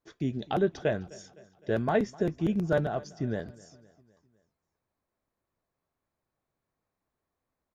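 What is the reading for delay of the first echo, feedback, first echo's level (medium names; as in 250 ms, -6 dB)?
256 ms, 54%, -22.0 dB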